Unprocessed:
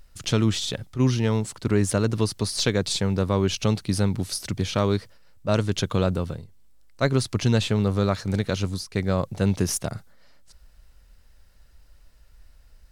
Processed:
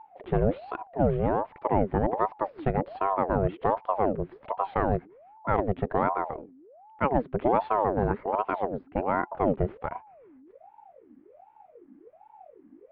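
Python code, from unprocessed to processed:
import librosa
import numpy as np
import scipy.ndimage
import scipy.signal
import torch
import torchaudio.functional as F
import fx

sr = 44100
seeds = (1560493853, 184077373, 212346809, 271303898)

y = scipy.ndimage.gaussian_filter1d(x, 5.1, mode='constant')
y = fx.ring_lfo(y, sr, carrier_hz=570.0, swing_pct=55, hz=1.3)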